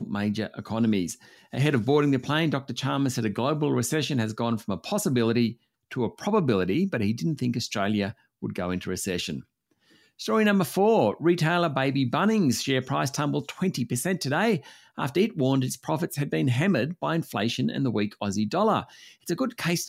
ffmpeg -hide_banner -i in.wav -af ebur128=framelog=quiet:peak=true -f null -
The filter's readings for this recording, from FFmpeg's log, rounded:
Integrated loudness:
  I:         -25.9 LUFS
  Threshold: -36.3 LUFS
Loudness range:
  LRA:         3.5 LU
  Threshold: -46.1 LUFS
  LRA low:   -27.5 LUFS
  LRA high:  -24.0 LUFS
True peak:
  Peak:       -9.4 dBFS